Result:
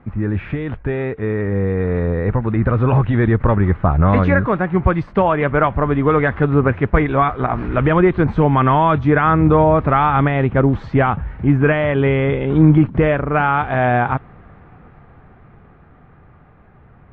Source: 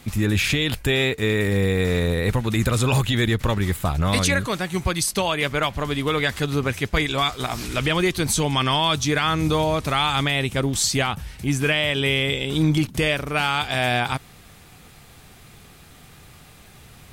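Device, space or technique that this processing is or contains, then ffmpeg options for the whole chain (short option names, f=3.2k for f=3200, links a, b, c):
action camera in a waterproof case: -af "lowpass=f=1.6k:w=0.5412,lowpass=f=1.6k:w=1.3066,dynaudnorm=f=280:g=21:m=10dB,volume=1dB" -ar 22050 -c:a aac -b:a 48k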